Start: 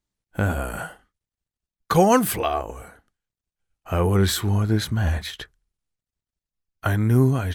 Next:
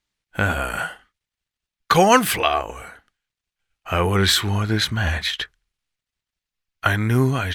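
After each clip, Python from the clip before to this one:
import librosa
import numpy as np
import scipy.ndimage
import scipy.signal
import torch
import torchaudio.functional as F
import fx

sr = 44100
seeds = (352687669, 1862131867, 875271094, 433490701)

y = fx.peak_eq(x, sr, hz=2600.0, db=12.5, octaves=2.8)
y = y * librosa.db_to_amplitude(-1.5)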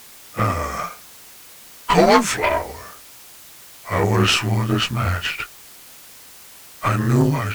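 y = fx.partial_stretch(x, sr, pct=89)
y = fx.dmg_noise_colour(y, sr, seeds[0], colour='white', level_db=-45.0)
y = fx.cheby_harmonics(y, sr, harmonics=(6,), levels_db=(-19,), full_scale_db=-3.0)
y = y * librosa.db_to_amplitude(2.0)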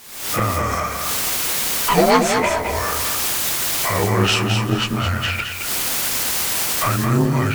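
y = fx.recorder_agc(x, sr, target_db=-11.5, rise_db_per_s=71.0, max_gain_db=30)
y = fx.echo_feedback(y, sr, ms=217, feedback_pct=28, wet_db=-6.0)
y = y * librosa.db_to_amplitude(-1.0)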